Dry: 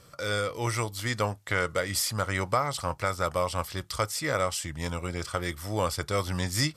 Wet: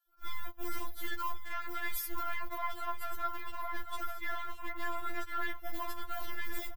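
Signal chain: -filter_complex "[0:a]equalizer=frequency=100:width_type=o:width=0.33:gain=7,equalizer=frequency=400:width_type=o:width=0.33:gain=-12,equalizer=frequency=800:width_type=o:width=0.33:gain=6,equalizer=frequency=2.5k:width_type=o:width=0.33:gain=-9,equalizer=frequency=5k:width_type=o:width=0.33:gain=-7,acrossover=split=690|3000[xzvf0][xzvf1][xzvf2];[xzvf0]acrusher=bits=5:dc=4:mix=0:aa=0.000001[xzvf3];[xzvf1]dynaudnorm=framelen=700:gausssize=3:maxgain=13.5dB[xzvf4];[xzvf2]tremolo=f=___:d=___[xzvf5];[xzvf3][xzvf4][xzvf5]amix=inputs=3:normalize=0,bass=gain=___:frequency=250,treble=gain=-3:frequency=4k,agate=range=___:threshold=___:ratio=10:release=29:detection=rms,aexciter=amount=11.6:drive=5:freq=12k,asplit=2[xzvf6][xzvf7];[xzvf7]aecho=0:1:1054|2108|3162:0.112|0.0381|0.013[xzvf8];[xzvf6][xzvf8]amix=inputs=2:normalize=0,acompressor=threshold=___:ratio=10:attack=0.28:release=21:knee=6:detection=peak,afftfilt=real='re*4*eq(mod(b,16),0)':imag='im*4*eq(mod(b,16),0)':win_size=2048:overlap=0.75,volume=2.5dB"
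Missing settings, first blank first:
1, 0.65, 7, -26dB, -30dB, -31dB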